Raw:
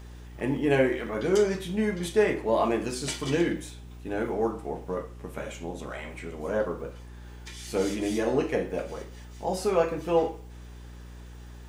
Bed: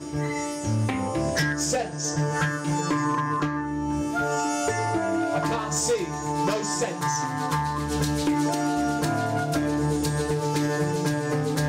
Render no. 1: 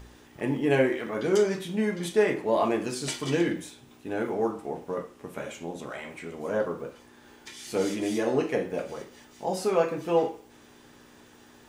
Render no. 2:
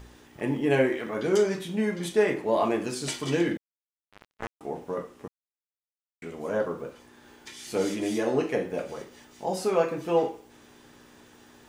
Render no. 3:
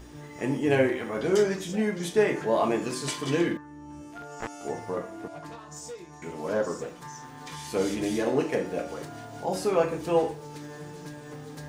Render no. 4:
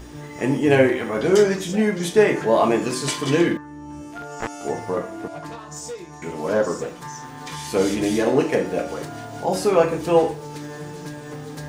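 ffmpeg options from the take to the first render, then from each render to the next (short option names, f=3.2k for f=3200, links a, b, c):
-af "bandreject=f=60:t=h:w=4,bandreject=f=120:t=h:w=4,bandreject=f=180:t=h:w=4"
-filter_complex "[0:a]asettb=1/sr,asplit=3[a][b][c];[a]atrim=end=3.574[d];[b]atrim=start=3.57:end=4.61,asetpts=PTS-STARTPTS,afade=t=in:d=0.004:c=qsin,afade=t=out:st=1.036:d=0.004:c=qsin,acrusher=bits=2:mix=0:aa=0.5[e];[c]atrim=start=4.606[f];[d][e]acrossfade=d=0.004:c1=hsin:c2=qsin[g];[g][f]acrossfade=d=0.004:c1=qsin:c2=hsin,asplit=3[h][i][j];[h]atrim=end=5.28,asetpts=PTS-STARTPTS,afade=t=out:st=5.276:d=0.004:c=hsin[k];[i]atrim=start=5.28:end=6.22,asetpts=PTS-STARTPTS,volume=0[l];[j]atrim=start=6.22,asetpts=PTS-STARTPTS,afade=t=in:d=0.004:c=hsin[m];[k][l][m]concat=n=3:v=0:a=1"
-filter_complex "[1:a]volume=-16.5dB[a];[0:a][a]amix=inputs=2:normalize=0"
-af "volume=7dB"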